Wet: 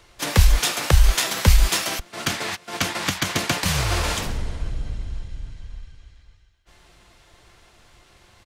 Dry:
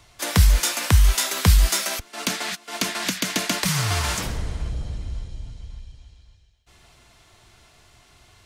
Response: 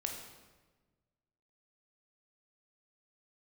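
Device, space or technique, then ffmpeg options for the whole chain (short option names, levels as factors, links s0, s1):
octave pedal: -filter_complex "[0:a]asplit=2[s0][s1];[s1]asetrate=22050,aresample=44100,atempo=2,volume=1[s2];[s0][s2]amix=inputs=2:normalize=0,volume=0.794"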